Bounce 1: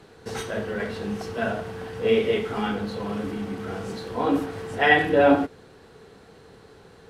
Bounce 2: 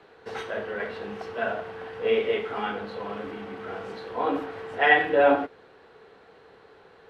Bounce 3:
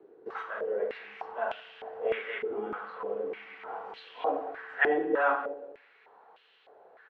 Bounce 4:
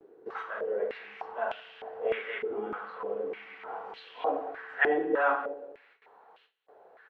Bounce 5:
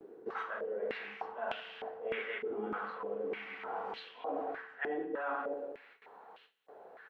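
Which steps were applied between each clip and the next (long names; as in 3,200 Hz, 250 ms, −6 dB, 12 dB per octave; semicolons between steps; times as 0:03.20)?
three-way crossover with the lows and the highs turned down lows −13 dB, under 370 Hz, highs −18 dB, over 3,700 Hz
repeating echo 188 ms, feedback 29%, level −17.5 dB; band-pass on a step sequencer 3.3 Hz 360–3,000 Hz; level +5.5 dB
noise gate with hold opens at −50 dBFS
parametric band 220 Hz +6 dB 0.8 octaves; reversed playback; downward compressor 6 to 1, threshold −37 dBFS, peak gain reduction 17 dB; reversed playback; level +2 dB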